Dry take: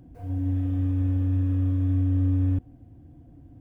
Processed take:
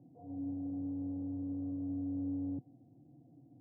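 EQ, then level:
elliptic band-pass filter 130–810 Hz, stop band 40 dB
−7.5 dB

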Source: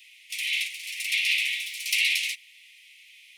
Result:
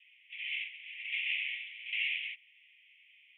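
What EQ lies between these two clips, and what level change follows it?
high-pass filter 1,500 Hz 6 dB per octave
Butterworth low-pass 3,300 Hz 96 dB per octave
high-frequency loss of the air 210 metres
−4.5 dB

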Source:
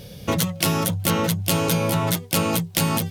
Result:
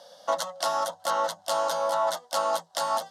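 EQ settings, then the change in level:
four-pole ladder high-pass 500 Hz, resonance 50%
low-pass filter 5,500 Hz 12 dB per octave
phaser with its sweep stopped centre 1,000 Hz, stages 4
+9.0 dB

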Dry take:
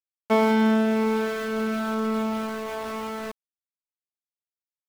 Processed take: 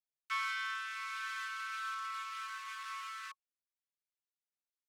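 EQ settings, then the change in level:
Chebyshev high-pass filter 1,100 Hz, order 10
high-frequency loss of the air 50 metres
high-shelf EQ 5,700 Hz +5 dB
−5.5 dB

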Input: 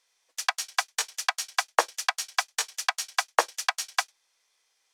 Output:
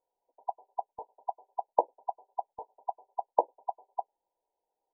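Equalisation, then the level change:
linear-phase brick-wall low-pass 1,000 Hz
0.0 dB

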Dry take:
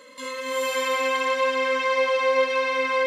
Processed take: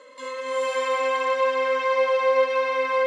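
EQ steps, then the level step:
high-pass filter 310 Hz 12 dB per octave
Butterworth low-pass 10,000 Hz 48 dB per octave
parametric band 660 Hz +9 dB 2.7 octaves
−6.5 dB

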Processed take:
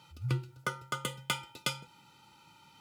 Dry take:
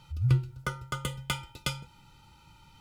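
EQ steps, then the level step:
high-pass filter 200 Hz 12 dB per octave
0.0 dB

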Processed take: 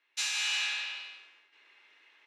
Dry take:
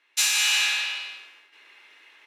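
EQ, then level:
low-pass filter 6,500 Hz 12 dB per octave
−8.5 dB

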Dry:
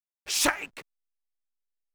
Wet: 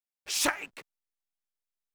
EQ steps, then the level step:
low-shelf EQ 88 Hz −5.5 dB
−3.0 dB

